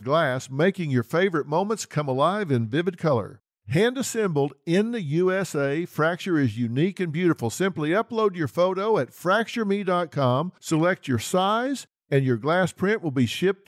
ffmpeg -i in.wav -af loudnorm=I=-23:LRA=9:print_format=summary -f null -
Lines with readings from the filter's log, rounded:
Input Integrated:    -24.1 LUFS
Input True Peak:      -8.4 dBTP
Input LRA:             0.6 LU
Input Threshold:     -34.2 LUFS